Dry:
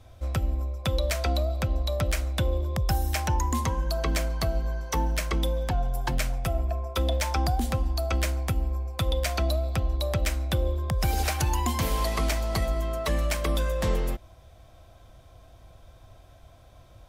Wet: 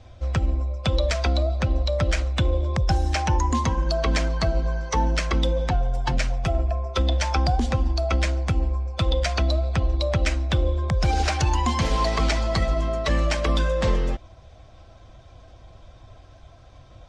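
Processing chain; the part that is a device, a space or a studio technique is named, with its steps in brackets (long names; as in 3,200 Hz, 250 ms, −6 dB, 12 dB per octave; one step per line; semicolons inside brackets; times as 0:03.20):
clip after many re-uploads (low-pass filter 6,600 Hz 24 dB per octave; spectral magnitudes quantised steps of 15 dB)
level +4.5 dB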